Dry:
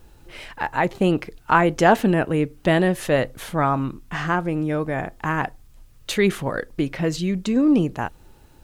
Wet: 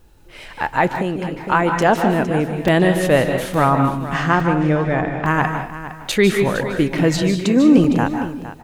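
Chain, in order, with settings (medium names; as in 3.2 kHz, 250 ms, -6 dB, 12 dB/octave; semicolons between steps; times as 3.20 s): 4.28–5.26 s: low-pass 8.3 kHz -> 3.8 kHz 12 dB/octave; level rider; 7.22–7.78 s: high-pass 190 Hz; delay 460 ms -13.5 dB; reverberation RT60 0.45 s, pre-delay 140 ms, DRR 5.5 dB; 0.87–1.43 s: compression 3:1, threshold -18 dBFS, peak gain reduction 7 dB; crackling interface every 0.86 s, samples 128, zero, from 0.96 s; trim -2 dB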